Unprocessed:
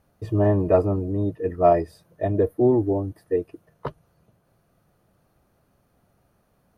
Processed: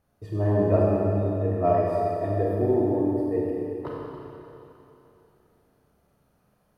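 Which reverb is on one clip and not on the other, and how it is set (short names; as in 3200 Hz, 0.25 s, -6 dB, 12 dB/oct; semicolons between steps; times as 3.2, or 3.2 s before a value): Schroeder reverb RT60 3.1 s, combs from 30 ms, DRR -4.5 dB; gain -7.5 dB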